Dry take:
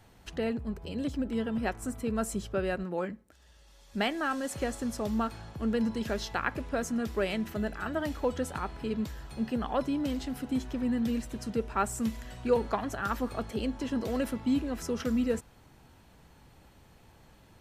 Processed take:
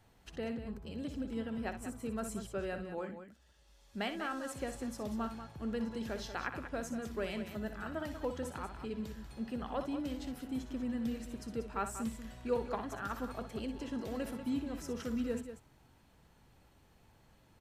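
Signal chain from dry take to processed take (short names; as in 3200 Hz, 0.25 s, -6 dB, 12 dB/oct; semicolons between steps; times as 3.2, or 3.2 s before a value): loudspeakers at several distances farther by 21 m -10 dB, 65 m -10 dB; gain -8 dB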